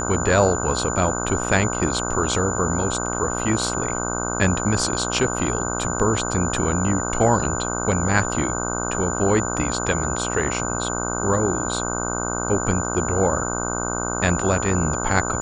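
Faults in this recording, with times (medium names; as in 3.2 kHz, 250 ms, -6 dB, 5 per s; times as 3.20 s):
buzz 60 Hz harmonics 26 -27 dBFS
whine 7 kHz -28 dBFS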